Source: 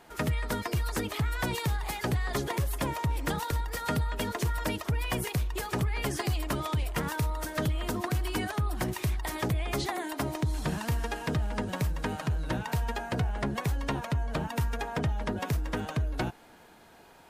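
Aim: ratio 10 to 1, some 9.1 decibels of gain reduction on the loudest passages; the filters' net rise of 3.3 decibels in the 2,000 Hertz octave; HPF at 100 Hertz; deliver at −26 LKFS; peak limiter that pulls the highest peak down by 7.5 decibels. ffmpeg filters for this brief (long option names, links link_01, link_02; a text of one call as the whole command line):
ffmpeg -i in.wav -af "highpass=100,equalizer=frequency=2000:width_type=o:gain=4,acompressor=threshold=-35dB:ratio=10,volume=15dB,alimiter=limit=-14dB:level=0:latency=1" out.wav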